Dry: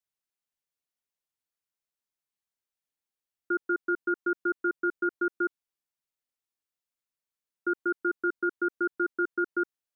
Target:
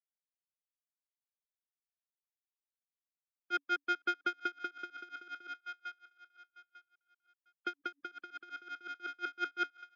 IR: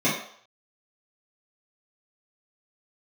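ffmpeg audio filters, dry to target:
-filter_complex "[0:a]lowshelf=frequency=400:gain=-4.5,bandreject=frequency=282.9:width_type=h:width=4,bandreject=frequency=565.8:width_type=h:width=4,bandreject=frequency=848.7:width_type=h:width=4,asoftclip=type=tanh:threshold=-32dB,afftfilt=real='re*gte(hypot(re,im),0.00398)':imag='im*gte(hypot(re,im),0.00398)':win_size=1024:overlap=0.75,adynamicequalizer=threshold=0.00447:dfrequency=1500:dqfactor=1.4:tfrequency=1500:tqfactor=1.4:attack=5:release=100:ratio=0.375:range=1.5:mode=boostabove:tftype=bell,acrossover=split=180|600[link_01][link_02][link_03];[link_02]acompressor=threshold=-46dB:ratio=12[link_04];[link_03]aecho=1:1:449|898|1347|1796|2245:0.282|0.127|0.0571|0.0257|0.0116[link_05];[link_01][link_04][link_05]amix=inputs=3:normalize=0,aeval=exprs='val(0)*pow(10,-28*(0.5-0.5*cos(2*PI*5.6*n/s))/20)':channel_layout=same,volume=4dB"

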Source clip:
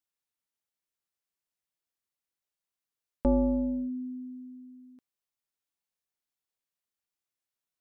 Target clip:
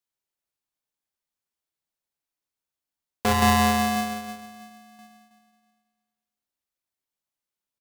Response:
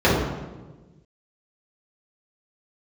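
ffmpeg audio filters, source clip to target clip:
-filter_complex "[0:a]asettb=1/sr,asplit=3[link_01][link_02][link_03];[link_01]atrim=end=3.424[link_04];[link_02]atrim=start=3.42:end=3.96,asetpts=PTS-STARTPTS,afade=type=in:duration=0.004:curve=qsin,afade=type=out:start_time=0.536:duration=0.004:curve=qsin,acontrast=72[link_05];[link_03]atrim=start=3.956[link_06];[link_04][link_05]acrossfade=duration=0.004:curve1=hsin:curve2=qsin[link_07];[link_07][link_06]acrossfade=duration=0.004:curve1=qsin:curve2=hsin,asplit=2[link_08][link_09];[link_09]adelay=320,lowpass=frequency=1100:poles=1,volume=-12dB,asplit=2[link_10][link_11];[link_11]adelay=320,lowpass=frequency=1100:poles=1,volume=0.23,asplit=2[link_12][link_13];[link_13]adelay=320,lowpass=frequency=1100:poles=1,volume=0.23[link_14];[link_08][link_10][link_12][link_14]amix=inputs=4:normalize=0,asplit=2[link_15][link_16];[1:a]atrim=start_sample=2205[link_17];[link_16][link_17]afir=irnorm=-1:irlink=0,volume=-29.5dB[link_18];[link_15][link_18]amix=inputs=2:normalize=0,aeval=exprs='val(0)*sgn(sin(2*PI*470*n/s))':channel_layout=same"

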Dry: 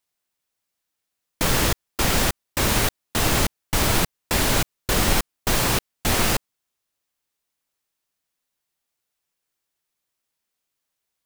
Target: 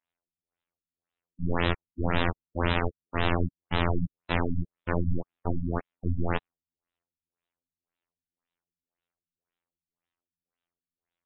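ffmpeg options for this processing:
ffmpeg -i in.wav -af "afftfilt=real='hypot(re,im)*cos(PI*b)':imag='0':win_size=2048:overlap=0.75,afftfilt=real='re*lt(b*sr/1024,250*pow(4100/250,0.5+0.5*sin(2*PI*1.9*pts/sr)))':imag='im*lt(b*sr/1024,250*pow(4100/250,0.5+0.5*sin(2*PI*1.9*pts/sr)))':win_size=1024:overlap=0.75" out.wav

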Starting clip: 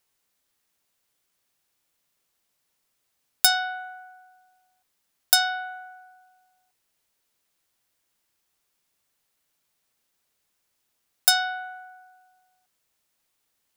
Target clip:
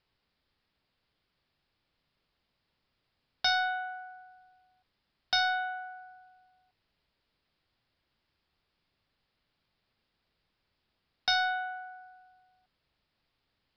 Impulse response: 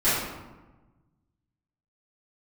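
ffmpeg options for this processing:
-af "lowshelf=frequency=200:gain=12,aresample=11025,asoftclip=type=tanh:threshold=-21.5dB,aresample=44100"

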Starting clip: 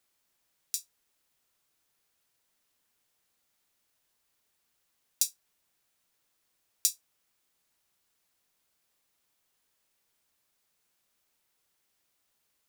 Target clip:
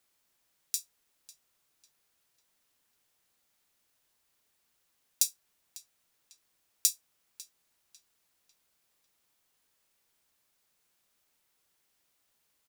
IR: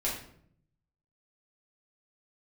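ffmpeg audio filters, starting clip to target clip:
-filter_complex "[0:a]asplit=2[link_01][link_02];[link_02]adelay=548,lowpass=frequency=4100:poles=1,volume=-15dB,asplit=2[link_03][link_04];[link_04]adelay=548,lowpass=frequency=4100:poles=1,volume=0.47,asplit=2[link_05][link_06];[link_06]adelay=548,lowpass=frequency=4100:poles=1,volume=0.47,asplit=2[link_07][link_08];[link_08]adelay=548,lowpass=frequency=4100:poles=1,volume=0.47[link_09];[link_01][link_03][link_05][link_07][link_09]amix=inputs=5:normalize=0,volume=1dB"

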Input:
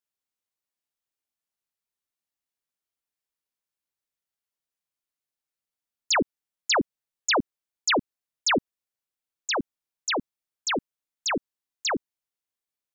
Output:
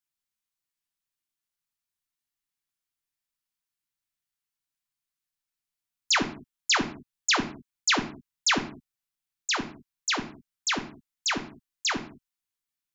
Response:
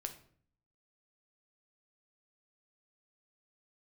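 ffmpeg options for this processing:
-filter_complex "[0:a]equalizer=frequency=520:width=1.5:gain=-14.5[link_01];[1:a]atrim=start_sample=2205,afade=type=out:start_time=0.26:duration=0.01,atrim=end_sample=11907[link_02];[link_01][link_02]afir=irnorm=-1:irlink=0,volume=3.5dB"

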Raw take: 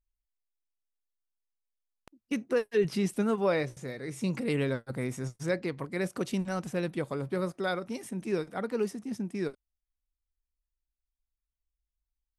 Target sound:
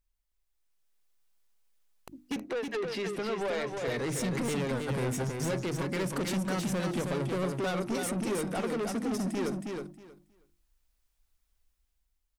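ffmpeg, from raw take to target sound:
ffmpeg -i in.wav -filter_complex "[0:a]bandreject=frequency=50:width_type=h:width=6,bandreject=frequency=100:width_type=h:width=6,bandreject=frequency=150:width_type=h:width=6,bandreject=frequency=200:width_type=h:width=6,bandreject=frequency=250:width_type=h:width=6,bandreject=frequency=300:width_type=h:width=6,bandreject=frequency=350:width_type=h:width=6,acompressor=threshold=-35dB:ratio=6,asettb=1/sr,asplit=3[link_01][link_02][link_03];[link_01]atrim=end=2.364[link_04];[link_02]atrim=start=2.36:end=3.88,asetpts=PTS-STARTPTS,afade=type=in:duration=0.004:curve=qsin,afade=type=out:start_time=1.516:duration=0.004:curve=qsin,acrossover=split=360 4700:gain=0.2 1 0.158[link_05][link_06][link_07];[link_05][link_06][link_07]amix=inputs=3:normalize=0[link_08];[link_03]atrim=start=3.876[link_09];[link_04][link_08]acrossfade=duration=0.004:curve1=hsin:curve2=qsin[link_10];[link_10][link_09]acrossfade=duration=0.004:curve1=qsin:curve2=hsin,dynaudnorm=framelen=110:gausssize=13:maxgain=8dB,asoftclip=type=tanh:threshold=-35dB,aecho=1:1:318|636|954:0.596|0.101|0.0172,volume=5.5dB" out.wav

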